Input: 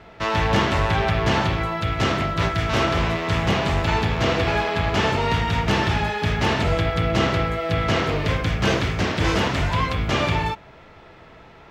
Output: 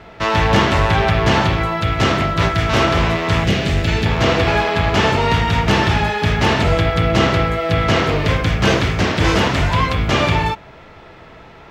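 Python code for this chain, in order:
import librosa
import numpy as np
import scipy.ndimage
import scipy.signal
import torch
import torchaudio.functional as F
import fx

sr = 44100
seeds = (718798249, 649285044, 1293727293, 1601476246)

y = fx.peak_eq(x, sr, hz=970.0, db=-14.0, octaves=0.86, at=(3.44, 4.06))
y = y * 10.0 ** (5.5 / 20.0)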